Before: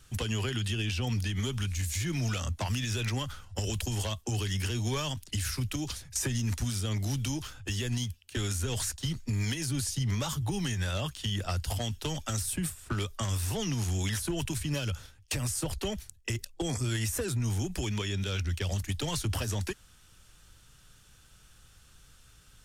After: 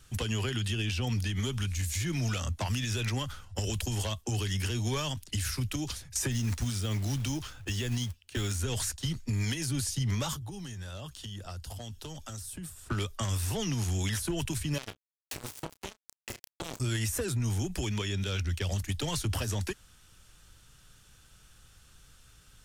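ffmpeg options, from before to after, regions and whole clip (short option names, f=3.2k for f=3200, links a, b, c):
-filter_complex "[0:a]asettb=1/sr,asplit=3[a][b][c];[a]atrim=end=6.314[d];[b]atrim=start=6.31:end=8.59,asetpts=PTS-STARTPTS,afade=t=in:d=0.004:c=qsin,afade=t=out:st=2.276:d=0.004:c=qsin,highshelf=f=11k:g=-7,acrusher=bits=5:mode=log:mix=0:aa=0.000001[e];[c]atrim=start=8.586[f];[d][e]acrossfade=d=0.004:c1=hsin:c2=qsin[g];[g][f]acrossfade=d=0.004:c1=qsin:c2=hsin,asettb=1/sr,asplit=3[h][i][j];[h]atrim=end=10.364[k];[i]atrim=start=10.36:end=12.89,asetpts=PTS-STARTPTS,afade=t=in:d=0.004:c=qsin,afade=t=out:st=2.526:d=0.004:c=qsin,equalizer=f=2.2k:t=o:w=0.68:g=-5.5,acompressor=threshold=-42dB:ratio=2.5:attack=3.2:release=140:knee=1:detection=peak[l];[j]atrim=start=12.886[m];[k][l]acrossfade=d=0.004:c1=hsin:c2=qsin[n];[n][m]acrossfade=d=0.004:c1=qsin:c2=hsin,asettb=1/sr,asplit=3[o][p][q];[o]atrim=end=14.784[r];[p]atrim=start=14.78:end=16.8,asetpts=PTS-STARTPTS,afade=t=in:d=0.004:c=qsin,afade=t=out:st=2.016:d=0.004:c=qsin,acrusher=bits=3:mix=0:aa=0.5,asplit=2[s][t];[t]adelay=31,volume=-14dB[u];[s][u]amix=inputs=2:normalize=0,atrim=end_sample=89082[v];[q]atrim=start=16.796[w];[r][v]acrossfade=d=0.004:c1=hsin:c2=qsin[x];[x][w]acrossfade=d=0.004:c1=qsin:c2=hsin"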